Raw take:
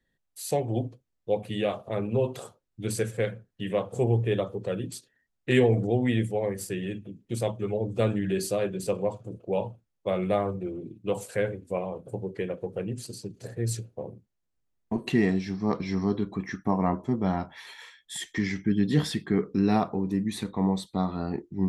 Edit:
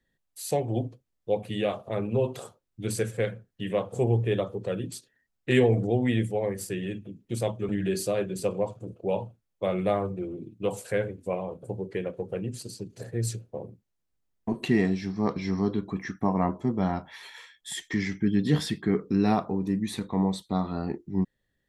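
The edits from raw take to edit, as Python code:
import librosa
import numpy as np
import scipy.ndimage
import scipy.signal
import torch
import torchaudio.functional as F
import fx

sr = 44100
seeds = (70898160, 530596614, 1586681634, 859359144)

y = fx.edit(x, sr, fx.cut(start_s=7.69, length_s=0.44), tone=tone)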